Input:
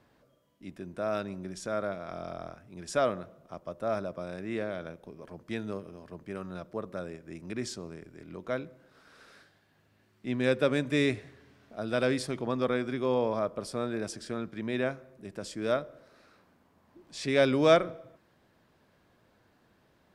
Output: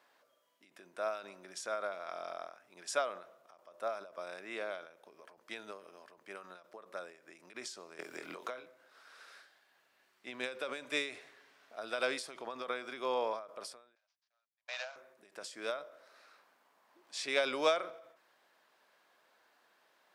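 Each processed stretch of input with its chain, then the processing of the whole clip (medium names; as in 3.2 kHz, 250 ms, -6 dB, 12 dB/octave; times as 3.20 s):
7.99–8.66 s: doubling 24 ms -5.5 dB + three bands compressed up and down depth 100%
13.95–14.96 s: CVSD coder 32 kbps + steep high-pass 560 Hz 72 dB/octave + gate -49 dBFS, range -57 dB
whole clip: high-pass 730 Hz 12 dB/octave; dynamic bell 1.8 kHz, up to -5 dB, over -54 dBFS, Q 5.9; endings held to a fixed fall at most 110 dB/s; trim +1 dB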